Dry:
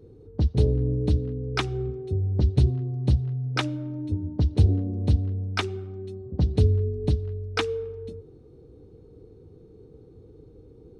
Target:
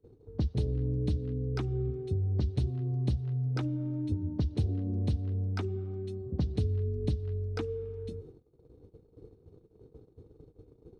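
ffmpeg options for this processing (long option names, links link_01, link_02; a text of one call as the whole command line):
ffmpeg -i in.wav -filter_complex "[0:a]agate=range=-22dB:threshold=-47dB:ratio=16:detection=peak,acrossover=split=350|1200[link_01][link_02][link_03];[link_01]acompressor=threshold=-28dB:ratio=4[link_04];[link_02]acompressor=threshold=-46dB:ratio=4[link_05];[link_03]acompressor=threshold=-51dB:ratio=4[link_06];[link_04][link_05][link_06]amix=inputs=3:normalize=0" out.wav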